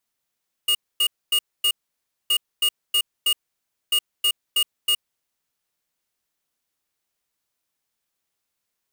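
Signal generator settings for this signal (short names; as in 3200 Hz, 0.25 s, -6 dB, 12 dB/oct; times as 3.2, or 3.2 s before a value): beep pattern square 2860 Hz, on 0.07 s, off 0.25 s, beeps 4, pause 0.59 s, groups 3, -19 dBFS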